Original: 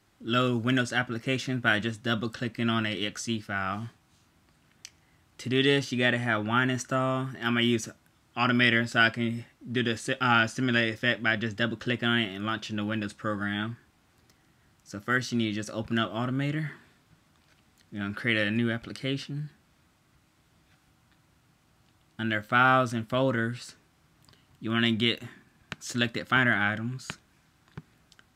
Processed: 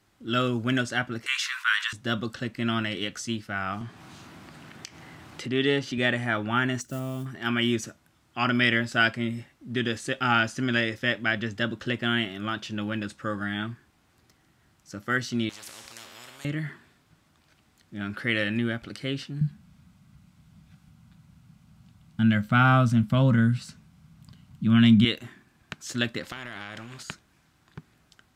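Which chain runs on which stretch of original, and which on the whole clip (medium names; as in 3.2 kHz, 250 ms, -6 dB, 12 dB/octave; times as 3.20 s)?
1.26–1.93 s: steep high-pass 970 Hz 96 dB/octave + level flattener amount 50%
3.81–5.98 s: high-pass 120 Hz + treble shelf 5.3 kHz -10 dB + upward compressor, threshold -29 dBFS
6.81–7.26 s: block-companded coder 5-bit + high-pass 44 Hz + peaking EQ 1.3 kHz -15 dB 2.5 oct
15.49–16.45 s: bass shelf 190 Hz -12 dB + feedback comb 78 Hz, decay 0.86 s, mix 70% + spectrum-flattening compressor 10:1
19.41–25.05 s: resonant low shelf 260 Hz +9 dB, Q 3 + band-stop 1.8 kHz
26.23–27.03 s: treble shelf 8.5 kHz -11.5 dB + compression 12:1, threshold -30 dBFS + spectrum-flattening compressor 2:1
whole clip: none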